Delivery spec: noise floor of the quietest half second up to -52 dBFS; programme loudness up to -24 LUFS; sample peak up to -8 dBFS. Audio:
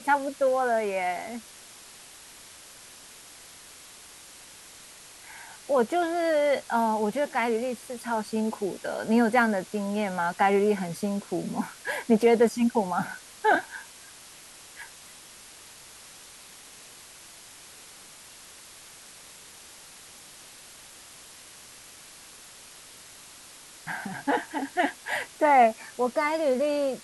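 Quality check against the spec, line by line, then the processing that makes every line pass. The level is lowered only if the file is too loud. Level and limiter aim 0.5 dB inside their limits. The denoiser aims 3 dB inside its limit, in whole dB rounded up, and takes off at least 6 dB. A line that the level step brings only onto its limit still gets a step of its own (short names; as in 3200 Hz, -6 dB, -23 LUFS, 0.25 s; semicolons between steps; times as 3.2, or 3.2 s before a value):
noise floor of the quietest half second -48 dBFS: fail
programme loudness -26.0 LUFS: OK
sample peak -10.0 dBFS: OK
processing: denoiser 7 dB, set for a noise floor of -48 dBFS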